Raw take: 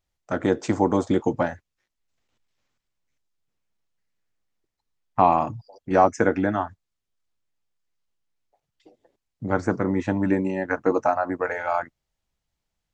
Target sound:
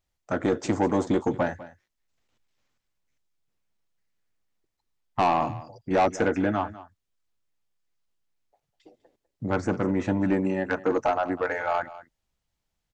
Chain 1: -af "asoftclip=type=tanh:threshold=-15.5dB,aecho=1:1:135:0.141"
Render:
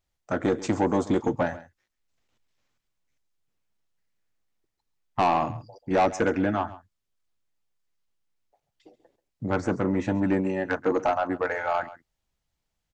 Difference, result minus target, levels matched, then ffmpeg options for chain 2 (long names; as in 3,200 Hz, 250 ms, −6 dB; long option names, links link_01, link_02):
echo 65 ms early
-af "asoftclip=type=tanh:threshold=-15.5dB,aecho=1:1:200:0.141"